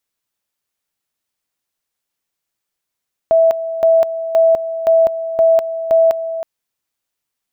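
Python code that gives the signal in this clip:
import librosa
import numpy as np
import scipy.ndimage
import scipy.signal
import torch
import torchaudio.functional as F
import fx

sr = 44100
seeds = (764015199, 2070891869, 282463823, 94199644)

y = fx.two_level_tone(sr, hz=656.0, level_db=-7.5, drop_db=12.0, high_s=0.2, low_s=0.32, rounds=6)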